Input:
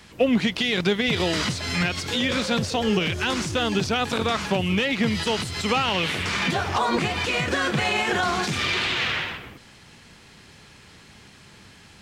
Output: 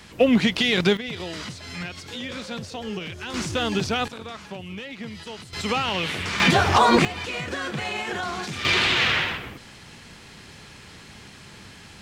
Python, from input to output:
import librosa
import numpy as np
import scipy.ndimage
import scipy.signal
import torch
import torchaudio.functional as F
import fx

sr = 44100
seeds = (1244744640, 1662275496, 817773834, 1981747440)

y = fx.gain(x, sr, db=fx.steps((0.0, 2.5), (0.97, -9.5), (3.34, -1.0), (4.08, -13.0), (5.53, -2.0), (6.4, 6.5), (7.05, -6.0), (8.65, 4.0)))